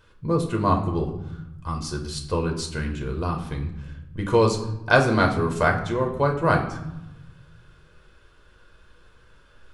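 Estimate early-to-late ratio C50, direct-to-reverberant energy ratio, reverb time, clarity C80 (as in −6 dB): 8.5 dB, 2.0 dB, 0.85 s, 11.5 dB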